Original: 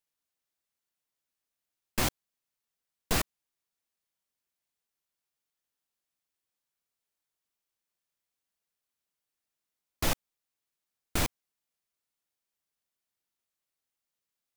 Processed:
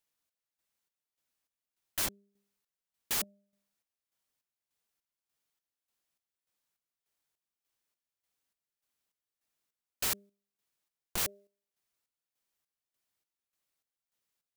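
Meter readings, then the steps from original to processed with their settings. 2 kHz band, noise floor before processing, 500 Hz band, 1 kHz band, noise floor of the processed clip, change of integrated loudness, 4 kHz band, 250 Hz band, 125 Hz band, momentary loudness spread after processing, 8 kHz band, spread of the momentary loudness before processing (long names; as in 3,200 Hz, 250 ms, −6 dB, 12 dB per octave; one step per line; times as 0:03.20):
−5.0 dB, below −85 dBFS, −9.5 dB, −8.0 dB, below −85 dBFS, −1.5 dB, −2.5 dB, −12.0 dB, −14.5 dB, 6 LU, +0.5 dB, 7 LU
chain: hum removal 200.6 Hz, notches 3
square-wave tremolo 1.7 Hz, depth 65%, duty 50%
wrap-around overflow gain 28 dB
level +2.5 dB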